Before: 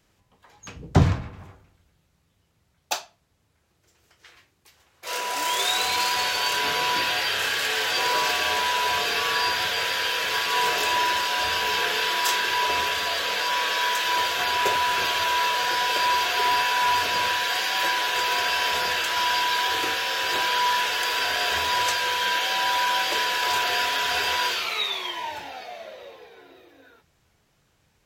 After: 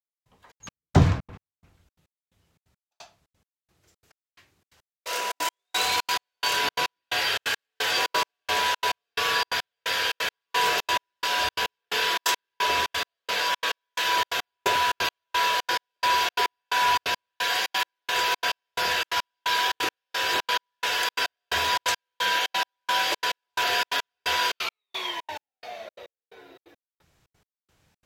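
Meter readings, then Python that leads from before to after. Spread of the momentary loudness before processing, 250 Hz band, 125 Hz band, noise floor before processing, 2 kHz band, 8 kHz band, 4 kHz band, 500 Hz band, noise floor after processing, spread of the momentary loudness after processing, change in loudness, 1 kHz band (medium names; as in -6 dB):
5 LU, -0.5 dB, 0.0 dB, -67 dBFS, -3.0 dB, -3.0 dB, -3.0 dB, -2.5 dB, under -85 dBFS, 7 LU, -3.0 dB, -3.0 dB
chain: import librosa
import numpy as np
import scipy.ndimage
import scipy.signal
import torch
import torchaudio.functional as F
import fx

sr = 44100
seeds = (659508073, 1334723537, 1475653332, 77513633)

y = fx.step_gate(x, sr, bpm=175, pattern='...xxx.x', floor_db=-60.0, edge_ms=4.5)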